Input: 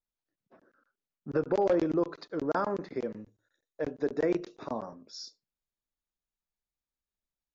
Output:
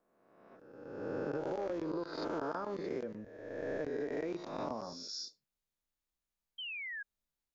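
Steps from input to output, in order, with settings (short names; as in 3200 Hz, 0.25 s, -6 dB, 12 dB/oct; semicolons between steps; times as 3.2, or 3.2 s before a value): spectral swells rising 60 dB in 1.34 s; compressor 10:1, threshold -32 dBFS, peak gain reduction 13 dB; painted sound fall, 6.58–7.03, 1600–3200 Hz -40 dBFS; gain -2 dB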